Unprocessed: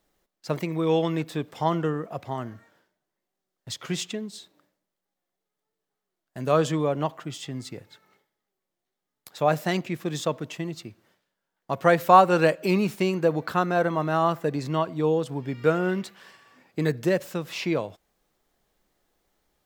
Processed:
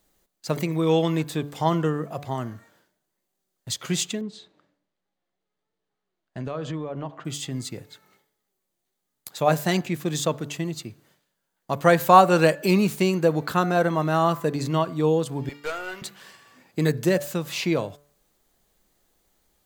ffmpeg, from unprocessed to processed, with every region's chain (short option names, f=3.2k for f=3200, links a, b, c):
-filter_complex "[0:a]asettb=1/sr,asplit=3[a][b][c];[a]atrim=end=4.214[d];[b]atrim=start=4.21:end=7.25,asetpts=PTS-STARTPTS,afade=t=in:d=0.004:c=qsin,afade=t=out:st=3.036:d=0.004:c=qsin,lowpass=3.6k,acompressor=threshold=-30dB:ratio=5:attack=3.2:release=140:knee=1:detection=peak,adynamicequalizer=threshold=0.00251:dfrequency=2100:dqfactor=0.7:tfrequency=2100:tqfactor=0.7:attack=5:release=100:ratio=0.375:range=3:mode=cutabove:tftype=highshelf[e];[c]atrim=start=7.246[f];[d][e]acrossfade=d=0.004:c1=hsin:c2=qsin[g];[g][f]acrossfade=d=0.004:c1=qsin:c2=hsin,asettb=1/sr,asplit=3[h][i][j];[h]atrim=end=15.494[k];[i]atrim=start=15.49:end=16.02,asetpts=PTS-STARTPTS,afade=t=in:d=0.004:c=qsin,afade=t=out:st=0.526:d=0.004:c=qsin,agate=range=-33dB:threshold=-36dB:ratio=3:release=100:detection=peak,highpass=740,aeval=exprs='(tanh(20*val(0)+0.35)-tanh(0.35))/20':c=same[l];[j]atrim=start=16.016[m];[k][l]acrossfade=d=0.004:c1=hsin:c2=qsin[n];[n][m]acrossfade=d=0.004:c1=qsin:c2=hsin,bass=f=250:g=3,treble=f=4k:g=7,bandreject=f=5.4k:w=12,bandreject=f=144.7:t=h:w=4,bandreject=f=289.4:t=h:w=4,bandreject=f=434.1:t=h:w=4,bandreject=f=578.8:t=h:w=4,bandreject=f=723.5:t=h:w=4,bandreject=f=868.2:t=h:w=4,bandreject=f=1.0129k:t=h:w=4,bandreject=f=1.1576k:t=h:w=4,bandreject=f=1.3023k:t=h:w=4,bandreject=f=1.447k:t=h:w=4,bandreject=f=1.5917k:t=h:w=4,bandreject=f=1.7364k:t=h:w=4,volume=1.5dB"